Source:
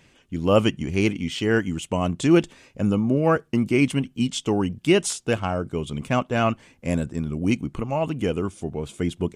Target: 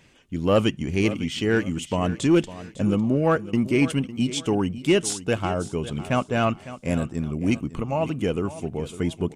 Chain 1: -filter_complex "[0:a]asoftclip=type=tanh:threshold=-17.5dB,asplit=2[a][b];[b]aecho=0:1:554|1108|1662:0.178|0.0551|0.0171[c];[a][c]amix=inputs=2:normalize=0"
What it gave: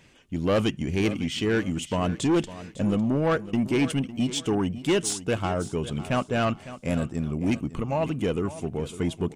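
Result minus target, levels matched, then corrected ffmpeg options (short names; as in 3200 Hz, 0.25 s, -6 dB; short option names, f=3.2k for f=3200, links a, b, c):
soft clip: distortion +10 dB
-filter_complex "[0:a]asoftclip=type=tanh:threshold=-9dB,asplit=2[a][b];[b]aecho=0:1:554|1108|1662:0.178|0.0551|0.0171[c];[a][c]amix=inputs=2:normalize=0"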